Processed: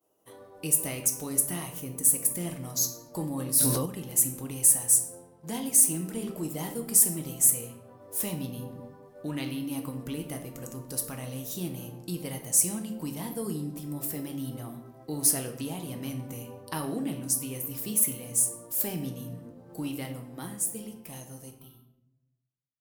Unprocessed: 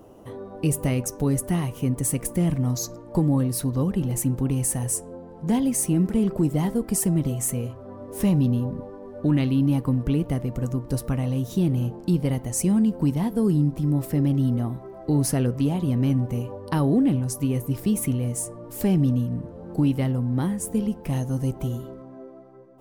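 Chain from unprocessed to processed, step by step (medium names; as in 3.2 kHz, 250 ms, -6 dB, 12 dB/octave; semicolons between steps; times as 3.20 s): fade out at the end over 3.00 s; RIAA curve recording; expander -40 dBFS; 1.80–2.31 s: peaking EQ 3.2 kHz -5.5 dB 2.3 oct; 21.50–21.90 s: static phaser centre 2 kHz, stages 6; simulated room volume 200 m³, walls mixed, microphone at 0.59 m; 3.04–3.86 s: decay stretcher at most 34 dB/s; trim -7.5 dB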